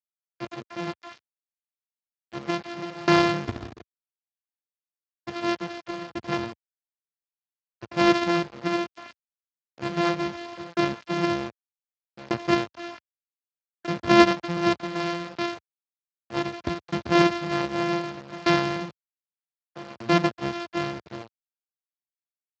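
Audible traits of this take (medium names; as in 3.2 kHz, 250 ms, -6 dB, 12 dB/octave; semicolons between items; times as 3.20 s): a buzz of ramps at a fixed pitch in blocks of 128 samples; tremolo saw down 0.65 Hz, depth 95%; a quantiser's noise floor 8-bit, dither none; Speex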